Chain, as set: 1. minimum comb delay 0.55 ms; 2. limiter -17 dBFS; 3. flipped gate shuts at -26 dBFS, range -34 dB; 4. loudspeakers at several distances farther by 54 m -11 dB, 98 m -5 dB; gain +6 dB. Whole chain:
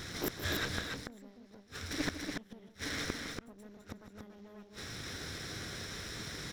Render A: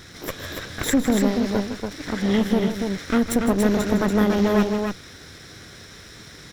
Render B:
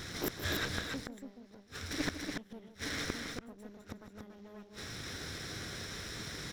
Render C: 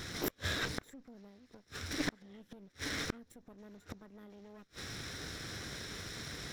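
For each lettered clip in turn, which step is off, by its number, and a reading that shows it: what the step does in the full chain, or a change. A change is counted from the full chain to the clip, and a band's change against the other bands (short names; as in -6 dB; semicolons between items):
3, momentary loudness spread change +4 LU; 2, momentary loudness spread change -2 LU; 4, echo-to-direct -4.0 dB to none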